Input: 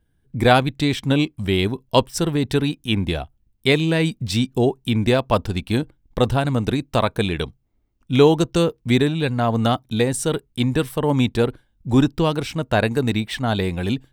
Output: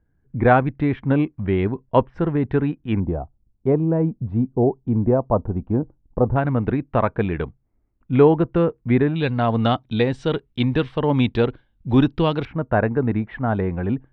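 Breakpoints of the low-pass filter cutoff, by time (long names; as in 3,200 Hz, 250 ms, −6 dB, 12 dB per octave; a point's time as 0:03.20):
low-pass filter 24 dB per octave
1,900 Hz
from 0:03.00 1,000 Hz
from 0:06.36 2,000 Hz
from 0:09.16 3,700 Hz
from 0:12.45 1,700 Hz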